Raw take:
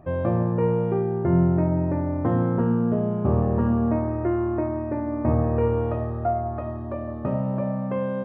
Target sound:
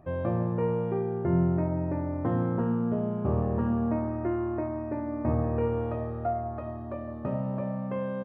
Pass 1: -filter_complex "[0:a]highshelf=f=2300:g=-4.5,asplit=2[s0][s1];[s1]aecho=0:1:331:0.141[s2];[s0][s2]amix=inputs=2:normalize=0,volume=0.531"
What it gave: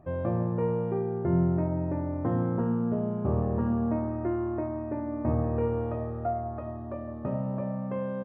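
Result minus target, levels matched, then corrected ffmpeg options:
4 kHz band -4.5 dB
-filter_complex "[0:a]highshelf=f=2300:g=3,asplit=2[s0][s1];[s1]aecho=0:1:331:0.141[s2];[s0][s2]amix=inputs=2:normalize=0,volume=0.531"

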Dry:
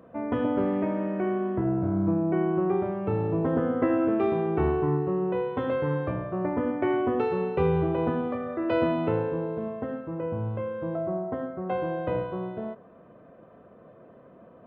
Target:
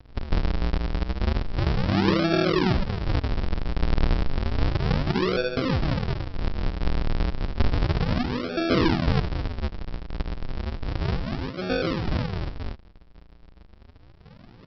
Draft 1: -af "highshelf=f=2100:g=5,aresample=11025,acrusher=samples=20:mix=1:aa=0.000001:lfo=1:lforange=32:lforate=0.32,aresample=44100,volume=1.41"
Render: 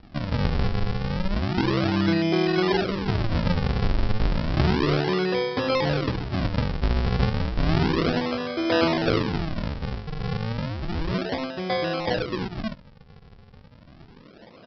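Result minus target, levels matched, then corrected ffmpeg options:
decimation with a swept rate: distortion -14 dB
-af "highshelf=f=2100:g=5,aresample=11025,acrusher=samples=53:mix=1:aa=0.000001:lfo=1:lforange=84.8:lforate=0.32,aresample=44100,volume=1.41"

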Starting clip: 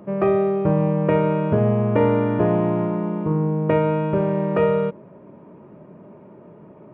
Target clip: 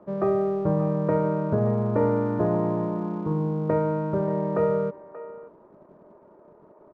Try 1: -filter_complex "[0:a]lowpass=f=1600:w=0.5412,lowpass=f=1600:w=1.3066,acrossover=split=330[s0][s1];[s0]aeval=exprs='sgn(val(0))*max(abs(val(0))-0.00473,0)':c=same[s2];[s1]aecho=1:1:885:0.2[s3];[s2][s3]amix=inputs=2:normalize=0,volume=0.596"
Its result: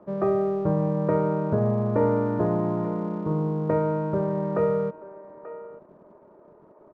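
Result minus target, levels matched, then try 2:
echo 303 ms late
-filter_complex "[0:a]lowpass=f=1600:w=0.5412,lowpass=f=1600:w=1.3066,acrossover=split=330[s0][s1];[s0]aeval=exprs='sgn(val(0))*max(abs(val(0))-0.00473,0)':c=same[s2];[s1]aecho=1:1:582:0.2[s3];[s2][s3]amix=inputs=2:normalize=0,volume=0.596"

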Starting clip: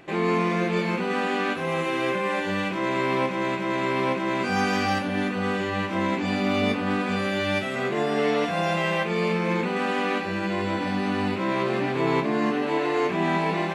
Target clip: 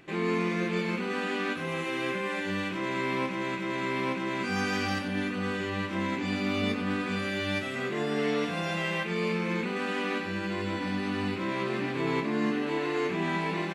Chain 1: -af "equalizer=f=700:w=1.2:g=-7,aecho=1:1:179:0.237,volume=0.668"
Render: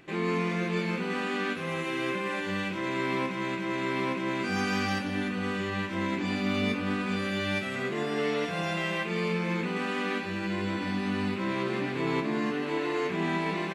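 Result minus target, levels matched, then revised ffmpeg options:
echo 84 ms late
-af "equalizer=f=700:w=1.2:g=-7,aecho=1:1:95:0.237,volume=0.668"

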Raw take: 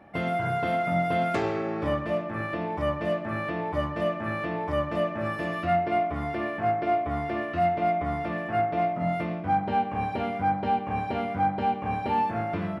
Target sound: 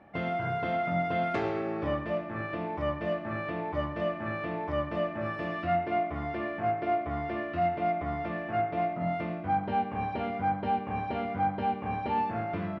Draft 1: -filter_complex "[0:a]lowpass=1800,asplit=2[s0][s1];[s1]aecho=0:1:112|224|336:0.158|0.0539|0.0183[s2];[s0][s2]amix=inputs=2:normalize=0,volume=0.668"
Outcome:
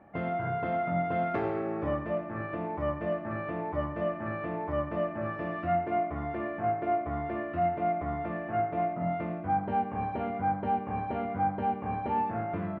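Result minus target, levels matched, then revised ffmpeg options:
4 kHz band -8.5 dB
-filter_complex "[0:a]lowpass=4500,asplit=2[s0][s1];[s1]aecho=0:1:112|224|336:0.158|0.0539|0.0183[s2];[s0][s2]amix=inputs=2:normalize=0,volume=0.668"

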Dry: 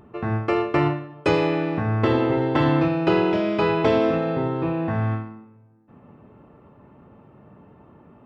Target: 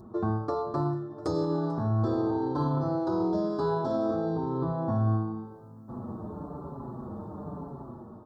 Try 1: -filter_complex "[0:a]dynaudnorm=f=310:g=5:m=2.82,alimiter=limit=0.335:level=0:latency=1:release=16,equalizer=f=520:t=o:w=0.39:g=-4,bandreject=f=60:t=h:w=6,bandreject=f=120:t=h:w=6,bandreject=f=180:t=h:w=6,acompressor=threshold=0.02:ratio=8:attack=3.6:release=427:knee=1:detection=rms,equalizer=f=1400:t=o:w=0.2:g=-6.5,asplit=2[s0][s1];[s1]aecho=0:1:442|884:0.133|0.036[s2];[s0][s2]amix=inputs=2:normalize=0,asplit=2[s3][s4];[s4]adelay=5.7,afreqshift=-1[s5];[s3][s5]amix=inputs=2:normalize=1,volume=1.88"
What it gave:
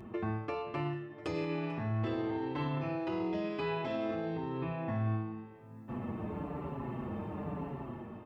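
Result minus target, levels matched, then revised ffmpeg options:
2 kHz band +12.0 dB; compression: peak gain reduction +7 dB
-filter_complex "[0:a]dynaudnorm=f=310:g=5:m=2.82,alimiter=limit=0.335:level=0:latency=1:release=16,asuperstop=centerf=2400:order=8:qfactor=0.96,equalizer=f=520:t=o:w=0.39:g=-4,bandreject=f=60:t=h:w=6,bandreject=f=120:t=h:w=6,bandreject=f=180:t=h:w=6,acompressor=threshold=0.0501:ratio=8:attack=3.6:release=427:knee=1:detection=rms,equalizer=f=1400:t=o:w=0.2:g=-6.5,asplit=2[s0][s1];[s1]aecho=0:1:442|884:0.133|0.036[s2];[s0][s2]amix=inputs=2:normalize=0,asplit=2[s3][s4];[s4]adelay=5.7,afreqshift=-1[s5];[s3][s5]amix=inputs=2:normalize=1,volume=1.88"

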